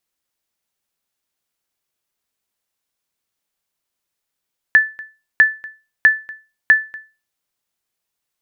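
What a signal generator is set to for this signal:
ping with an echo 1,750 Hz, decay 0.30 s, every 0.65 s, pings 4, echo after 0.24 s, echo −22.5 dB −2.5 dBFS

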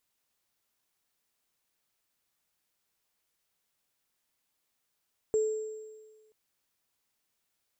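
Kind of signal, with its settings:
inharmonic partials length 0.98 s, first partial 433 Hz, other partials 7,510 Hz, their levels −18 dB, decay 1.45 s, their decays 1.40 s, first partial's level −22 dB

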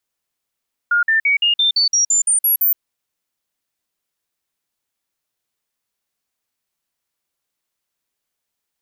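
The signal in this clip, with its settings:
stepped sweep 1,420 Hz up, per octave 3, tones 11, 0.12 s, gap 0.05 s −12 dBFS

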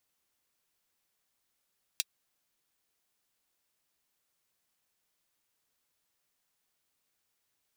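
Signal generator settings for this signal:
closed synth hi-hat, high-pass 3,200 Hz, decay 0.04 s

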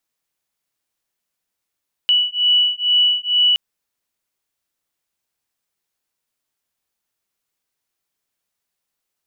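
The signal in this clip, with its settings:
two tones that beat 2,950 Hz, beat 2.2 Hz, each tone −16.5 dBFS 1.47 s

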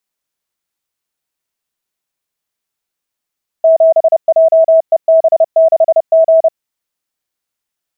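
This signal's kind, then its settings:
Morse code "7JEB6G" 30 words per minute 649 Hz −4 dBFS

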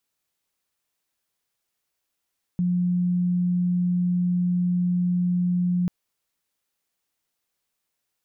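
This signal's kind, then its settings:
tone sine 178 Hz −19.5 dBFS 3.29 s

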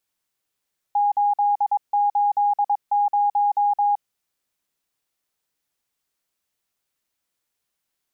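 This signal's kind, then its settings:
Morse code "880" 22 words per minute 820 Hz −16 dBFS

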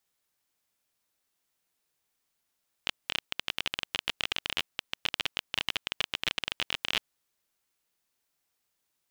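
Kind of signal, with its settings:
Geiger counter clicks 23 per second −11 dBFS 4.20 s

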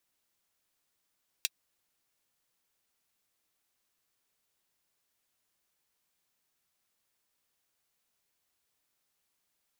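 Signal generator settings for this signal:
closed synth hi-hat, high-pass 2,900 Hz, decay 0.04 s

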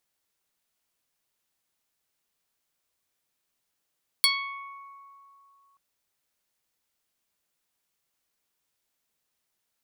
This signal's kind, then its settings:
Karplus-Strong string C#6, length 1.53 s, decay 2.96 s, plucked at 0.14, medium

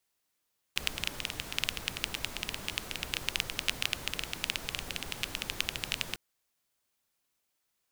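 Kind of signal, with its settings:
rain-like ticks over hiss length 5.40 s, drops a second 13, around 2,800 Hz, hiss −5 dB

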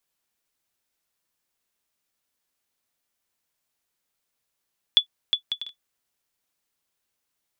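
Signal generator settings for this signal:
bouncing ball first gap 0.36 s, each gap 0.52, 3,440 Hz, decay 95 ms −6 dBFS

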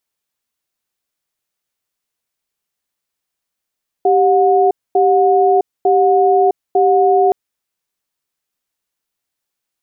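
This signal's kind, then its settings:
tone pair in a cadence 391 Hz, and 726 Hz, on 0.66 s, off 0.24 s, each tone −11.5 dBFS 3.27 s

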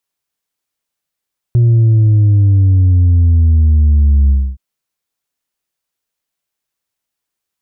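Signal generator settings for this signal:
bass drop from 120 Hz, over 3.02 s, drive 2.5 dB, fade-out 0.27 s, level −6.5 dB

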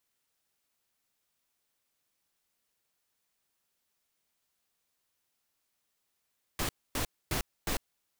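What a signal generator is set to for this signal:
noise bursts pink, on 0.10 s, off 0.26 s, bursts 4, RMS −31.5 dBFS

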